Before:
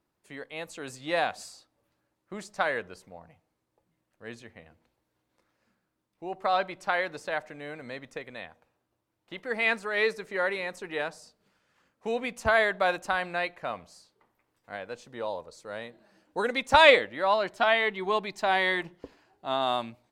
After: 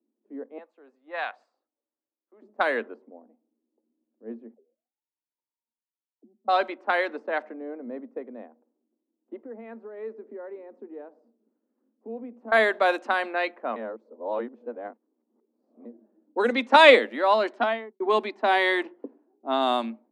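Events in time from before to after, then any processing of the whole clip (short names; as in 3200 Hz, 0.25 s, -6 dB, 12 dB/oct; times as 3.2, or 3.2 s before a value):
0.58–2.42 Bessel high-pass 1300 Hz
4.54–6.48 auto-wah 200–1000 Hz, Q 19, down, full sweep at -41.5 dBFS
9.36–12.52 compressor 2:1, threshold -46 dBFS
13.76–15.85 reverse
17.45–18 studio fade out
whole clip: Chebyshev high-pass 220 Hz, order 8; low-pass opened by the level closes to 300 Hz, open at -23 dBFS; low shelf 300 Hz +11.5 dB; gain +2.5 dB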